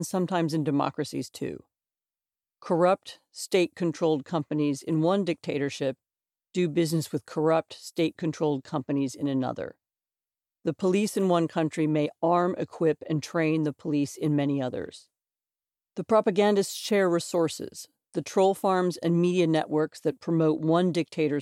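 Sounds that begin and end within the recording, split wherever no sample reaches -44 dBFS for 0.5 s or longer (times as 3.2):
2.62–5.93
6.55–9.71
10.65–15.01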